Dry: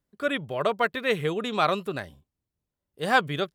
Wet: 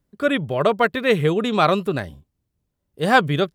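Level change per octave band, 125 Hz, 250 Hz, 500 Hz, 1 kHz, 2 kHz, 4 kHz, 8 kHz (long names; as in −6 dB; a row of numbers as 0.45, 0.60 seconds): +10.5 dB, +9.5 dB, +7.5 dB, +6.0 dB, +5.0 dB, +4.5 dB, can't be measured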